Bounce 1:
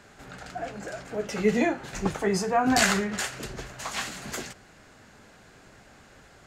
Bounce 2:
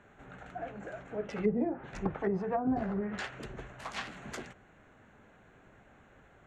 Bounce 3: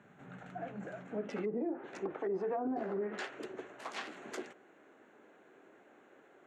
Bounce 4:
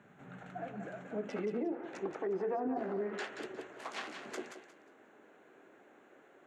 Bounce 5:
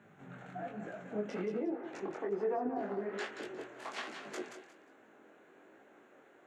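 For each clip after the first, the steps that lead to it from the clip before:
adaptive Wiener filter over 9 samples; treble cut that deepens with the level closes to 560 Hz, closed at −19.5 dBFS; level −5.5 dB
harmonic generator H 3 −25 dB, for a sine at −17.5 dBFS; high-pass filter sweep 160 Hz → 340 Hz, 0:00.90–0:01.61; brickwall limiter −27 dBFS, peak gain reduction 11 dB; level −1.5 dB
feedback echo with a high-pass in the loop 179 ms, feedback 25%, high-pass 600 Hz, level −7 dB
chorus effect 1.2 Hz, delay 18 ms, depth 6.2 ms; level +3 dB

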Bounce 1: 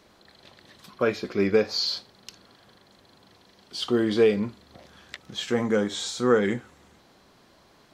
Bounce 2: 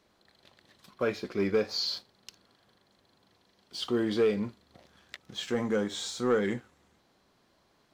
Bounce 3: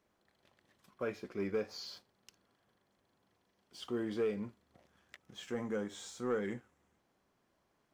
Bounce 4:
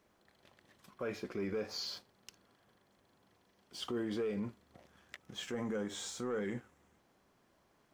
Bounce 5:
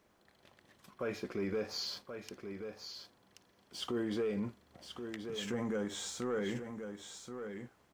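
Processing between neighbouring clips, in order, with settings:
leveller curve on the samples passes 1; level −8.5 dB
parametric band 4,100 Hz −8.5 dB 0.61 octaves; level −8.5 dB
brickwall limiter −35.5 dBFS, peak gain reduction 10 dB; level +5.5 dB
single-tap delay 1,080 ms −8 dB; level +1.5 dB

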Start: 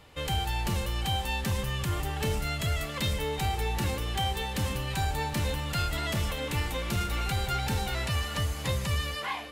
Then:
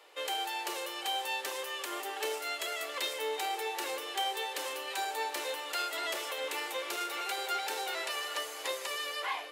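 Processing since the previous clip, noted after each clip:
Butterworth high-pass 350 Hz 48 dB per octave
level −1.5 dB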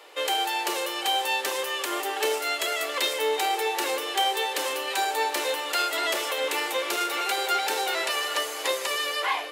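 low-shelf EQ 160 Hz +9.5 dB
level +8.5 dB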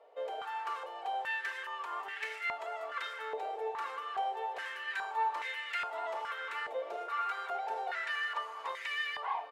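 comb filter 4.4 ms, depth 51%
band-pass on a step sequencer 2.4 Hz 620–2,000 Hz
level −2 dB

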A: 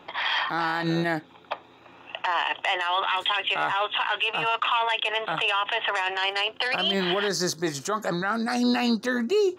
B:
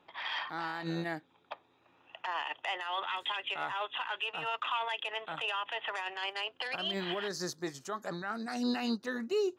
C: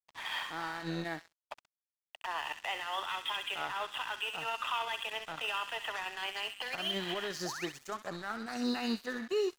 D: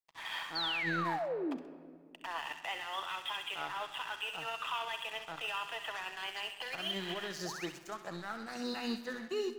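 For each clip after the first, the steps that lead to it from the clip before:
expander for the loud parts 1.5 to 1, over −36 dBFS; level −8 dB
sound drawn into the spectrogram rise, 0:07.45–0:07.66, 600–3,300 Hz −40 dBFS; delay with a high-pass on its return 65 ms, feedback 58%, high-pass 1,400 Hz, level −6 dB; dead-zone distortion −47.5 dBFS
sound drawn into the spectrogram fall, 0:00.55–0:01.57, 240–4,700 Hz −33 dBFS; rectangular room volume 3,200 cubic metres, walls mixed, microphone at 0.69 metres; level −3 dB

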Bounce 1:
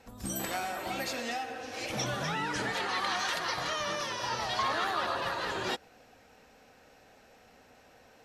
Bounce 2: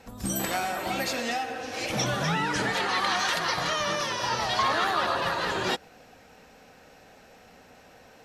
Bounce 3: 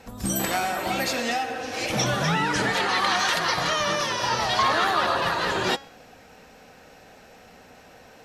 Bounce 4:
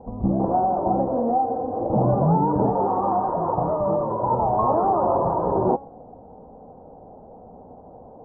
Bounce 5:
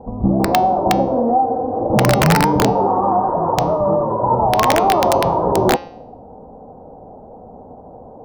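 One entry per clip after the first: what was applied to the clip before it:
parametric band 170 Hz +5.5 dB 0.29 octaves; level +5.5 dB
hum removal 274.8 Hz, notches 28; level +3.5 dB
Butterworth low-pass 950 Hz 48 dB per octave; level +7 dB
wrap-around overflow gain 11 dB; hum removal 174.2 Hz, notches 36; level +6 dB

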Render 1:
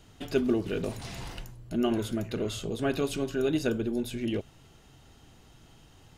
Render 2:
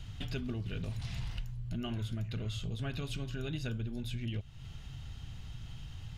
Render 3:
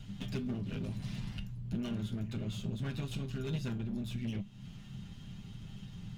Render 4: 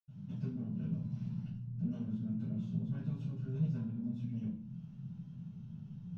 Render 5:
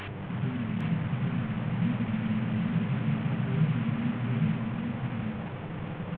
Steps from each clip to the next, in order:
drawn EQ curve 120 Hz 0 dB, 350 Hz −21 dB, 3,300 Hz −7 dB, 9,300 Hz −17 dB; downward compressor 3 to 1, threshold −52 dBFS, peak gain reduction 13 dB; level +14 dB
lower of the sound and its delayed copy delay 7.8 ms; parametric band 190 Hz +13 dB 0.64 octaves; tuned comb filter 200 Hz, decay 0.24 s, harmonics all, mix 60%; level +3.5 dB
convolution reverb RT60 0.45 s, pre-delay 76 ms; level +3 dB
linear delta modulator 16 kbit/s, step −40.5 dBFS; hum with harmonics 100 Hz, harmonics 35, −50 dBFS −7 dB per octave; single-tap delay 806 ms −3.5 dB; level +7.5 dB

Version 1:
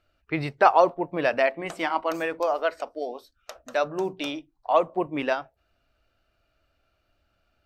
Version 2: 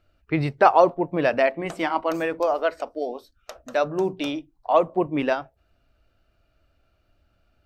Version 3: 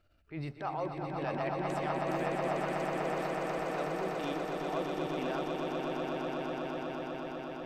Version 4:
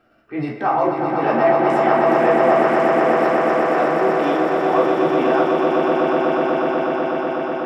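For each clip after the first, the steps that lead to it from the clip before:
low-shelf EQ 430 Hz +7.5 dB
downward compressor 2 to 1, threshold −38 dBFS, peak gain reduction 15 dB; transient designer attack −10 dB, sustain +5 dB; on a send: echo that builds up and dies away 123 ms, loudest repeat 8, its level −5 dB; on the sum: level −4.5 dB
convolution reverb RT60 0.50 s, pre-delay 3 ms, DRR −4 dB; level +4 dB

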